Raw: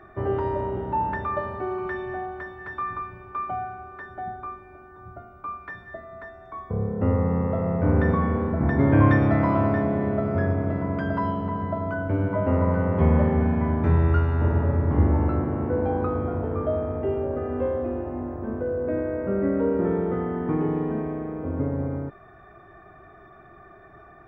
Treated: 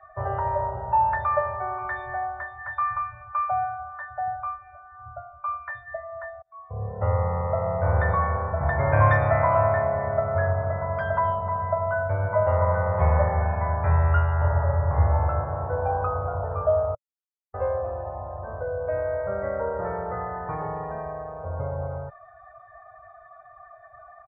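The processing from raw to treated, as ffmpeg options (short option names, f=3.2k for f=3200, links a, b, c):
-filter_complex "[0:a]asplit=4[a][b][c][d];[a]atrim=end=6.42,asetpts=PTS-STARTPTS,afade=t=out:st=6.416:d=0.004:c=hsin[e];[b]atrim=start=6.42:end=16.95,asetpts=PTS-STARTPTS,afade=t=in:d=0.54,afade=t=out:st=10.526:d=0.004:c=hsin[f];[c]atrim=start=16.95:end=17.54,asetpts=PTS-STARTPTS,volume=0[g];[d]atrim=start=17.54,asetpts=PTS-STARTPTS,afade=t=in:d=0.004:c=hsin[h];[e][f][g][h]concat=n=4:v=0:a=1,firequalizer=gain_entry='entry(110,0);entry(260,-26);entry(580,6)':delay=0.05:min_phase=1,afftdn=nr=16:nf=-38,highshelf=f=2.7k:g=-9.5"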